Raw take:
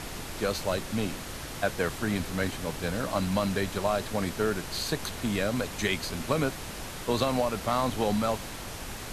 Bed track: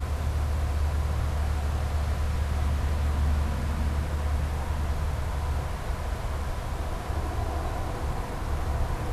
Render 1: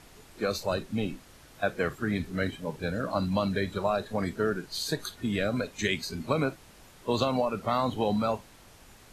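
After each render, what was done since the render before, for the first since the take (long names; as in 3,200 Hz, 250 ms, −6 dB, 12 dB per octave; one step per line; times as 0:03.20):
noise reduction from a noise print 15 dB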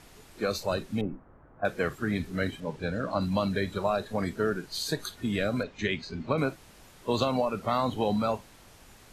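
0:01.01–0:01.65: inverse Chebyshev low-pass filter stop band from 7,400 Hz, stop band 80 dB
0:02.60–0:03.21: high-frequency loss of the air 52 metres
0:05.63–0:06.38: high-frequency loss of the air 160 metres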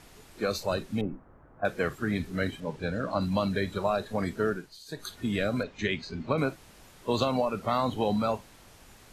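0:04.49–0:05.14: duck −16.5 dB, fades 0.28 s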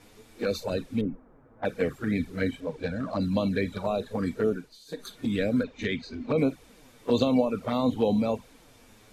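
flanger swept by the level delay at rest 11.2 ms, full sweep at −23 dBFS
hollow resonant body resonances 260/470/2,300/3,600 Hz, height 9 dB, ringing for 45 ms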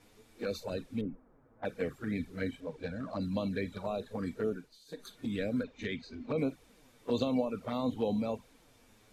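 level −7.5 dB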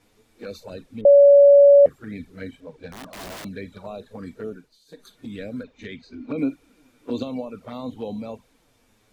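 0:01.05–0:01.86: beep over 567 Hz −7.5 dBFS
0:02.91–0:03.45: wrap-around overflow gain 32.5 dB
0:06.12–0:07.23: hollow resonant body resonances 290/1,400/2,400 Hz, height 12 dB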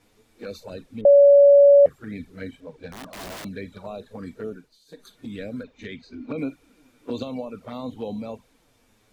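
dynamic equaliser 290 Hz, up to −6 dB, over −31 dBFS, Q 1.5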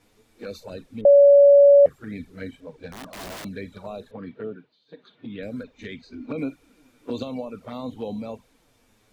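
0:04.11–0:05.43: Chebyshev band-pass filter 110–3,400 Hz, order 3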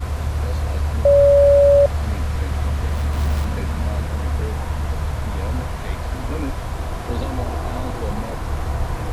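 mix in bed track +5 dB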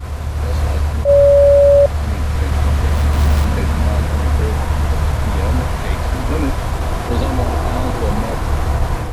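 automatic gain control gain up to 7.5 dB
level that may rise only so fast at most 200 dB per second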